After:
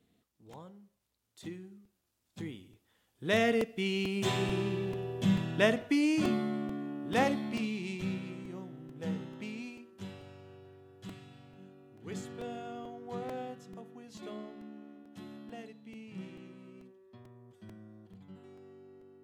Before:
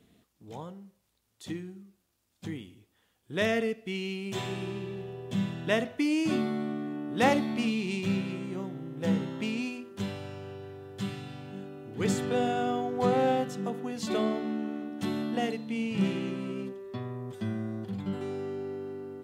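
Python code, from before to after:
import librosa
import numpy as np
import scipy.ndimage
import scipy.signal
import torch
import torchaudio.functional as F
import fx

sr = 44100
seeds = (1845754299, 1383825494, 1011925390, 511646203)

y = fx.doppler_pass(x, sr, speed_mps=9, closest_m=10.0, pass_at_s=4.63)
y = fx.buffer_crackle(y, sr, first_s=0.53, period_s=0.44, block=128, kind='repeat')
y = F.gain(torch.from_numpy(y), 3.5).numpy()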